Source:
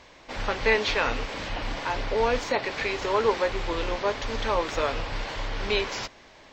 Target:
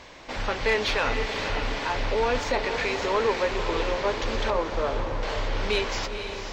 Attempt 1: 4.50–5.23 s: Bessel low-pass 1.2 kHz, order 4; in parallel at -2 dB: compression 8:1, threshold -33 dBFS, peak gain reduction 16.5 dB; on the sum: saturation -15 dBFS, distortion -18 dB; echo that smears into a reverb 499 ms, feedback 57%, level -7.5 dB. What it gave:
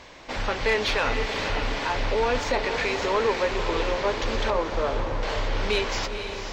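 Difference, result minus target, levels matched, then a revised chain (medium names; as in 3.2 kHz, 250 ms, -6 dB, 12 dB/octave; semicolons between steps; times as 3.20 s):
compression: peak gain reduction -7.5 dB
4.50–5.23 s: Bessel low-pass 1.2 kHz, order 4; in parallel at -2 dB: compression 8:1, threshold -41.5 dBFS, peak gain reduction 24 dB; on the sum: saturation -15 dBFS, distortion -19 dB; echo that smears into a reverb 499 ms, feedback 57%, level -7.5 dB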